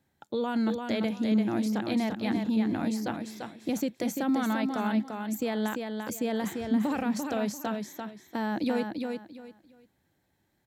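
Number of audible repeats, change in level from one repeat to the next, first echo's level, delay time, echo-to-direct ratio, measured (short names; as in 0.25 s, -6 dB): 3, -12.5 dB, -5.0 dB, 0.343 s, -4.5 dB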